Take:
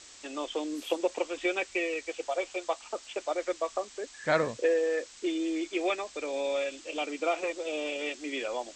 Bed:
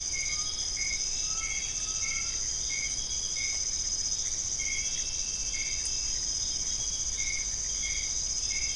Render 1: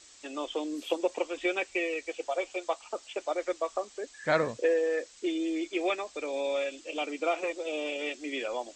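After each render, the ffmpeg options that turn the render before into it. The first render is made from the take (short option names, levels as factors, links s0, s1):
-af "afftdn=nr=6:nf=-51"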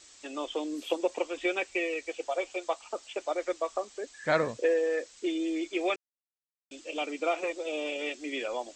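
-filter_complex "[0:a]asplit=3[s0][s1][s2];[s0]atrim=end=5.96,asetpts=PTS-STARTPTS,afade=t=out:st=5.956:d=0.004:c=hsin[s3];[s1]atrim=start=5.96:end=6.71,asetpts=PTS-STARTPTS,volume=0[s4];[s2]atrim=start=6.71,asetpts=PTS-STARTPTS,afade=t=in:d=0.004:c=hsin[s5];[s3][s4][s5]concat=n=3:v=0:a=1"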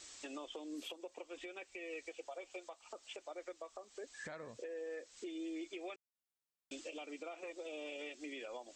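-af "acompressor=threshold=0.00891:ratio=4,alimiter=level_in=4.47:limit=0.0631:level=0:latency=1:release=308,volume=0.224"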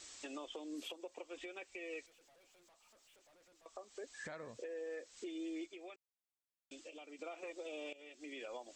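-filter_complex "[0:a]asettb=1/sr,asplit=3[s0][s1][s2];[s0]atrim=end=2.064[s3];[s1]atrim=start=2.06:end=3.66,asetpts=PTS-STARTPTS,afade=t=in:d=0.004:c=qsin,afade=t=out:st=1.596:d=0.004:c=qsin,aeval=exprs='(tanh(2240*val(0)+0.1)-tanh(0.1))/2240':c=same[s4];[s2]atrim=start=3.656[s5];[s3][s4]acrossfade=d=0.004:c1=hsin:c2=qsin[s6];[s6][s5]acrossfade=d=0.004:c1=qsin:c2=hsin,asplit=4[s7][s8][s9][s10];[s7]atrim=end=5.662[s11];[s8]atrim=start=5.658:end=7.192,asetpts=PTS-STARTPTS,volume=0.501[s12];[s9]atrim=start=7.188:end=7.93,asetpts=PTS-STARTPTS,afade=t=out:st=0.738:d=0.004:c=hsin:silence=0.133352[s13];[s10]atrim=start=7.93,asetpts=PTS-STARTPTS,afade=t=in:d=0.52:silence=0.133352[s14];[s11][s12]acrossfade=d=0.004:c1=hsin:c2=hsin[s15];[s13][s14]concat=n=2:v=0:a=1[s16];[s15][s16]acrossfade=d=0.004:c1=hsin:c2=hsin"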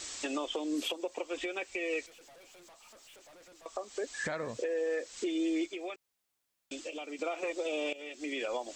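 -af "volume=3.98"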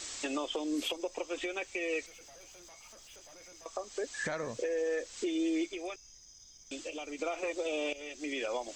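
-filter_complex "[1:a]volume=0.0562[s0];[0:a][s0]amix=inputs=2:normalize=0"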